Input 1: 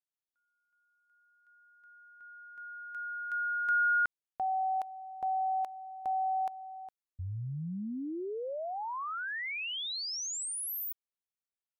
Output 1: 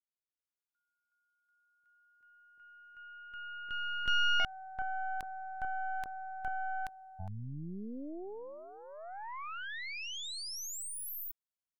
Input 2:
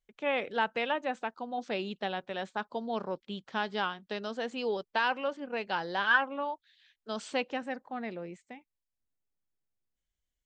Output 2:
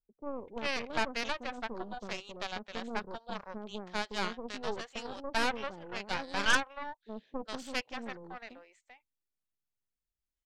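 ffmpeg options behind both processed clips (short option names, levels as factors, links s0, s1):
-filter_complex "[0:a]acrossover=split=600[s0][s1];[s1]adelay=390[s2];[s0][s2]amix=inputs=2:normalize=0,aeval=exprs='0.2*(cos(1*acos(clip(val(0)/0.2,-1,1)))-cos(1*PI/2))+0.0562*(cos(6*acos(clip(val(0)/0.2,-1,1)))-cos(6*PI/2))+0.00708*(cos(7*acos(clip(val(0)/0.2,-1,1)))-cos(7*PI/2))':c=same,volume=0.708"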